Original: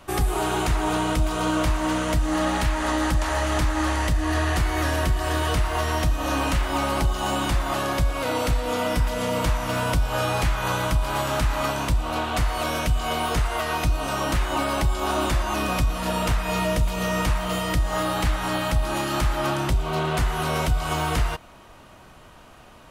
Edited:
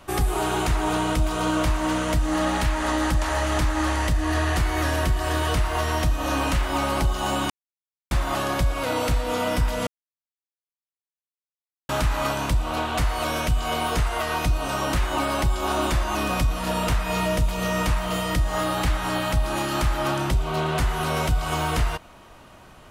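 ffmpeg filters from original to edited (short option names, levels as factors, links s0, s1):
-filter_complex "[0:a]asplit=4[s0][s1][s2][s3];[s0]atrim=end=7.5,asetpts=PTS-STARTPTS,afade=t=out:st=7.496:d=0.004:c=hsin,apad=pad_dur=0.61[s4];[s1]atrim=start=7.5:end=9.26,asetpts=PTS-STARTPTS,afade=t=in:d=0.004:c=hsin,afade=t=out:st=1.756:d=0.004:c=hsin[s5];[s2]atrim=start=9.26:end=11.28,asetpts=PTS-STARTPTS,volume=0[s6];[s3]atrim=start=11.28,asetpts=PTS-STARTPTS,afade=t=in:d=0.004:c=hsin[s7];[s4][s5][s6][s7]concat=n=4:v=0:a=1"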